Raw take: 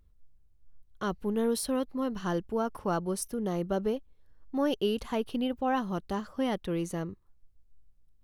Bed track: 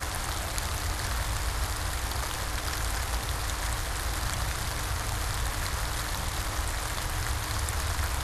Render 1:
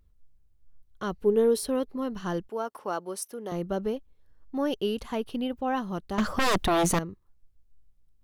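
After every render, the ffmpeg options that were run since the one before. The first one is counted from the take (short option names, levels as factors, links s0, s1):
-filter_complex "[0:a]asettb=1/sr,asplit=3[s0][s1][s2];[s0]atrim=end=1.224[s3];[s1]atrim=start=1.22:end=1.96,asetpts=PTS-STARTPTS,afade=t=in:d=0.004:c=qsin,afade=t=out:st=0.736:d=0.004:c=qsin,equalizer=f=420:w=4.2:g=13[s4];[s2]atrim=start=1.956[s5];[s3][s4]acrossfade=d=0.004:c1=hsin:c2=qsin[s6];[s6][s5]acrossfade=d=0.004:c1=qsin:c2=hsin,asettb=1/sr,asplit=3[s7][s8][s9];[s7]atrim=end=2.494[s10];[s8]atrim=start=2.49:end=3.52,asetpts=PTS-STARTPTS,afade=t=in:d=0.004:c=qsin,afade=t=out:st=1.026:d=0.004:c=qsin,highpass=380[s11];[s9]atrim=start=3.516[s12];[s10][s11]acrossfade=d=0.004:c1=hsin:c2=qsin[s13];[s13][s12]acrossfade=d=0.004:c1=qsin:c2=hsin,asettb=1/sr,asplit=3[s14][s15][s16];[s14]atrim=end=6.184[s17];[s15]atrim=start=6.18:end=6.99,asetpts=PTS-STARTPTS,afade=t=in:d=0.004:c=qsin,afade=t=out:st=0.806:d=0.004:c=qsin,aeval=exprs='0.106*sin(PI/2*4.47*val(0)/0.106)':c=same[s18];[s16]atrim=start=6.986[s19];[s17][s18]acrossfade=d=0.004:c1=hsin:c2=qsin[s20];[s20][s19]acrossfade=d=0.004:c1=qsin:c2=hsin"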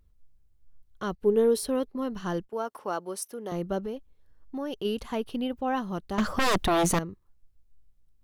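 -filter_complex "[0:a]asettb=1/sr,asplit=3[s0][s1][s2];[s0]atrim=end=1.154[s3];[s1]atrim=start=1.15:end=2.56,asetpts=PTS-STARTPTS,afade=t=in:d=0.004:c=qsin,afade=t=out:st=1.406:d=0.004:c=qsin,agate=range=0.316:threshold=0.00631:ratio=16:release=100:detection=peak[s4];[s2]atrim=start=2.556[s5];[s3][s4]acrossfade=d=0.004:c1=hsin:c2=qsin[s6];[s6][s5]acrossfade=d=0.004:c1=qsin:c2=hsin,asplit=3[s7][s8][s9];[s7]afade=t=out:st=3.79:d=0.02[s10];[s8]acompressor=threshold=0.0224:ratio=2:attack=3.2:release=140:knee=1:detection=peak,afade=t=in:st=3.79:d=0.02,afade=t=out:st=4.84:d=0.02[s11];[s9]afade=t=in:st=4.84:d=0.02[s12];[s10][s11][s12]amix=inputs=3:normalize=0"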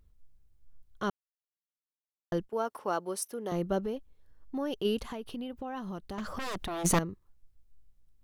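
-filter_complex "[0:a]asplit=3[s0][s1][s2];[s0]afade=t=out:st=5.05:d=0.02[s3];[s1]acompressor=threshold=0.0178:ratio=6:attack=3.2:release=140:knee=1:detection=peak,afade=t=in:st=5.05:d=0.02,afade=t=out:st=6.84:d=0.02[s4];[s2]afade=t=in:st=6.84:d=0.02[s5];[s3][s4][s5]amix=inputs=3:normalize=0,asplit=3[s6][s7][s8];[s6]atrim=end=1.1,asetpts=PTS-STARTPTS,afade=t=out:st=1.096:d=0.004:c=hsin[s9];[s7]atrim=start=1.1:end=2.32,asetpts=PTS-STARTPTS,volume=0[s10];[s8]atrim=start=2.32,asetpts=PTS-STARTPTS,afade=t=in:d=0.004:c=hsin[s11];[s9][s10][s11]concat=n=3:v=0:a=1"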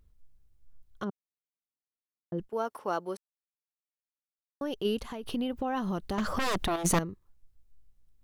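-filter_complex "[0:a]asplit=3[s0][s1][s2];[s0]afade=t=out:st=1.03:d=0.02[s3];[s1]bandpass=f=220:t=q:w=0.93,afade=t=in:st=1.03:d=0.02,afade=t=out:st=2.38:d=0.02[s4];[s2]afade=t=in:st=2.38:d=0.02[s5];[s3][s4][s5]amix=inputs=3:normalize=0,asettb=1/sr,asplit=3[s6][s7][s8];[s6]atrim=end=5.234[s9];[s7]atrim=start=5.23:end=6.76,asetpts=PTS-STARTPTS,afade=t=in:d=0.004:c=qsin,afade=t=out:st=1.526:d=0.004:c=qsin,acontrast=78[s10];[s8]atrim=start=6.756[s11];[s9][s10]acrossfade=d=0.004:c1=hsin:c2=qsin[s12];[s12][s11]acrossfade=d=0.004:c1=qsin:c2=hsin,asplit=3[s13][s14][s15];[s13]atrim=end=3.17,asetpts=PTS-STARTPTS,afade=t=out:st=3.166:d=0.004:c=hsin[s16];[s14]atrim=start=3.17:end=4.61,asetpts=PTS-STARTPTS,volume=0[s17];[s15]atrim=start=4.61,asetpts=PTS-STARTPTS,afade=t=in:d=0.004:c=hsin[s18];[s16][s17][s18]concat=n=3:v=0:a=1"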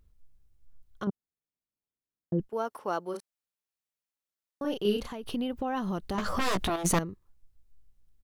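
-filter_complex "[0:a]asettb=1/sr,asplit=3[s0][s1][s2];[s0]atrim=end=1.074[s3];[s1]atrim=start=1.07:end=2.41,asetpts=PTS-STARTPTS,afade=t=in:d=0.004:c=qsin,afade=t=out:st=1.336:d=0.004:c=qsin,tiltshelf=f=650:g=8.5[s4];[s2]atrim=start=2.406[s5];[s3][s4]acrossfade=d=0.004:c1=hsin:c2=qsin[s6];[s6][s5]acrossfade=d=0.004:c1=qsin:c2=hsin,asplit=3[s7][s8][s9];[s7]afade=t=out:st=3.13:d=0.02[s10];[s8]asplit=2[s11][s12];[s12]adelay=34,volume=0.708[s13];[s11][s13]amix=inputs=2:normalize=0,afade=t=in:st=3.13:d=0.02,afade=t=out:st=5.07:d=0.02[s14];[s9]afade=t=in:st=5.07:d=0.02[s15];[s10][s14][s15]amix=inputs=3:normalize=0,asettb=1/sr,asplit=3[s16][s17][s18];[s16]atrim=end=6.134[s19];[s17]atrim=start=6.13:end=6.7,asetpts=PTS-STARTPTS,afade=t=in:d=0.004:c=qsin,afade=t=out:st=0.566:d=0.004:c=qsin,asplit=2[s20][s21];[s21]adelay=16,volume=0.531[s22];[s20][s22]amix=inputs=2:normalize=0,atrim=end_sample=25137[s23];[s18]atrim=start=6.696[s24];[s19][s23]acrossfade=d=0.004:c1=hsin:c2=qsin[s25];[s25][s24]acrossfade=d=0.004:c1=qsin:c2=hsin"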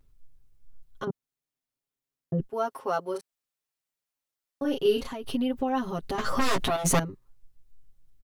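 -af "aecho=1:1:7.4:0.99"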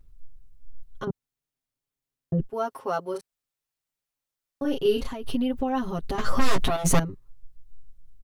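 -af "lowshelf=f=110:g=10.5"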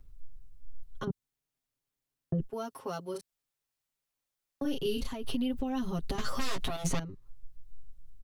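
-filter_complex "[0:a]acrossover=split=270|2700|6100[s0][s1][s2][s3];[s0]acompressor=threshold=0.0316:ratio=4[s4];[s1]acompressor=threshold=0.0112:ratio=4[s5];[s2]acompressor=threshold=0.01:ratio=4[s6];[s3]acompressor=threshold=0.00398:ratio=4[s7];[s4][s5][s6][s7]amix=inputs=4:normalize=0"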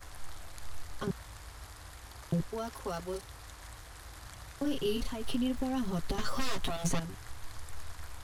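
-filter_complex "[1:a]volume=0.133[s0];[0:a][s0]amix=inputs=2:normalize=0"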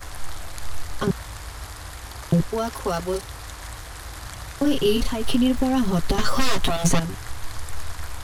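-af "volume=3.98"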